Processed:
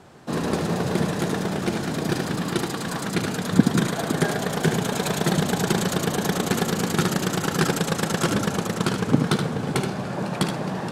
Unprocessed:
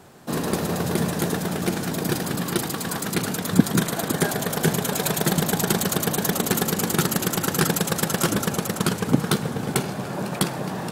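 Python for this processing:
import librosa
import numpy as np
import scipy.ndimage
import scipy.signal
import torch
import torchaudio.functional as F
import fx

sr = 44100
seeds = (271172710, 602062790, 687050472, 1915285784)

y = fx.air_absorb(x, sr, metres=53.0)
y = y + 10.0 ** (-7.0 / 20.0) * np.pad(y, (int(75 * sr / 1000.0), 0))[:len(y)]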